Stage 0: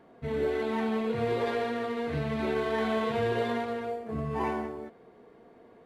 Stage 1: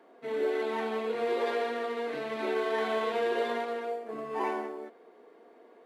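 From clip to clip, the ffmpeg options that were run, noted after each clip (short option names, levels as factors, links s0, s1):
-af "highpass=f=290:w=0.5412,highpass=f=290:w=1.3066"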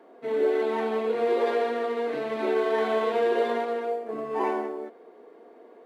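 -af "equalizer=f=400:t=o:w=3:g=6"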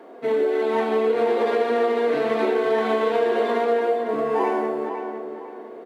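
-filter_complex "[0:a]acompressor=threshold=0.0447:ratio=6,asplit=2[s0][s1];[s1]adelay=505,lowpass=f=3200:p=1,volume=0.422,asplit=2[s2][s3];[s3]adelay=505,lowpass=f=3200:p=1,volume=0.34,asplit=2[s4][s5];[s5]adelay=505,lowpass=f=3200:p=1,volume=0.34,asplit=2[s6][s7];[s7]adelay=505,lowpass=f=3200:p=1,volume=0.34[s8];[s0][s2][s4][s6][s8]amix=inputs=5:normalize=0,volume=2.66"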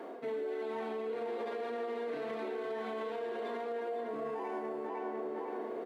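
-af "areverse,acompressor=threshold=0.0355:ratio=6,areverse,alimiter=level_in=2.11:limit=0.0631:level=0:latency=1:release=78,volume=0.473"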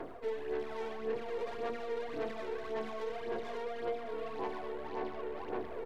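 -af "aeval=exprs='0.0316*(cos(1*acos(clip(val(0)/0.0316,-1,1)))-cos(1*PI/2))+0.00398*(cos(6*acos(clip(val(0)/0.0316,-1,1)))-cos(6*PI/2))':c=same,aphaser=in_gain=1:out_gain=1:delay=2.2:decay=0.54:speed=1.8:type=sinusoidal,volume=0.631"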